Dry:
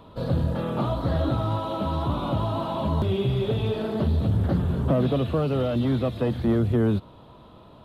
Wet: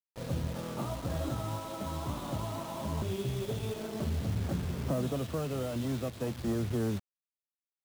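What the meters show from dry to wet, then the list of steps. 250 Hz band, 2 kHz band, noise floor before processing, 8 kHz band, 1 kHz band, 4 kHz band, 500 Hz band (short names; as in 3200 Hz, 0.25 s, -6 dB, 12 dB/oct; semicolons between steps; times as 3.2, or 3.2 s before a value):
-10.0 dB, -6.5 dB, -49 dBFS, n/a, -10.0 dB, -7.0 dB, -10.0 dB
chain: bit-crush 6-bit; crossover distortion -39 dBFS; gain -9 dB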